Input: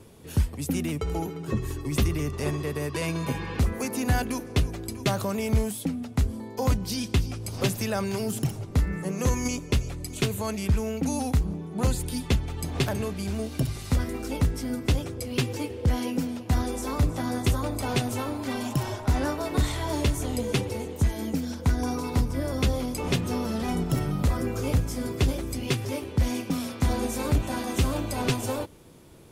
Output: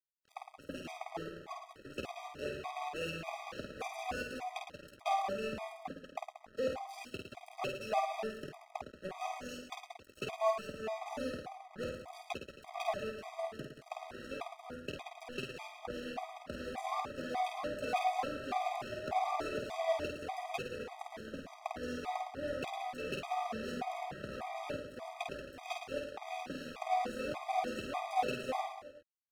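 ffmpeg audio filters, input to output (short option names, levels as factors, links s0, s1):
-filter_complex "[0:a]equalizer=f=960:w=0.4:g=-3,bandreject=f=1000:w=6.8,asplit=2[s0][s1];[s1]acompressor=threshold=0.0224:ratio=6,volume=1.26[s2];[s0][s2]amix=inputs=2:normalize=0,asoftclip=type=tanh:threshold=0.126,asplit=3[s3][s4][s5];[s3]bandpass=f=730:t=q:w=8,volume=1[s6];[s4]bandpass=f=1090:t=q:w=8,volume=0.501[s7];[s5]bandpass=f=2440:t=q:w=8,volume=0.355[s8];[s6][s7][s8]amix=inputs=3:normalize=0,aeval=exprs='sgn(val(0))*max(abs(val(0))-0.00398,0)':c=same,asplit=2[s9][s10];[s10]aecho=0:1:50|110|182|268.4|372.1:0.631|0.398|0.251|0.158|0.1[s11];[s9][s11]amix=inputs=2:normalize=0,afftfilt=real='re*gt(sin(2*PI*1.7*pts/sr)*(1-2*mod(floor(b*sr/1024/640),2)),0)':imag='im*gt(sin(2*PI*1.7*pts/sr)*(1-2*mod(floor(b*sr/1024/640),2)),0)':win_size=1024:overlap=0.75,volume=3.16"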